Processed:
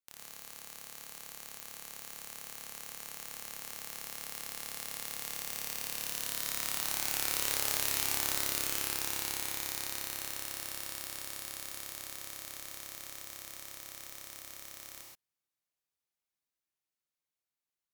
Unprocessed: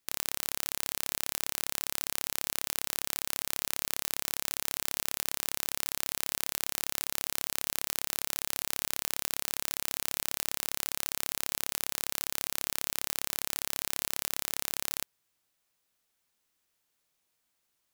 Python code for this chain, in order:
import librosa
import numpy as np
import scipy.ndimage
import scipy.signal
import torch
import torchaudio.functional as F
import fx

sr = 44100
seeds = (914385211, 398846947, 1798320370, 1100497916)

y = fx.doppler_pass(x, sr, speed_mps=8, closest_m=8.9, pass_at_s=7.77)
y = fx.rev_gated(y, sr, seeds[0], gate_ms=150, shape='rising', drr_db=-1.0)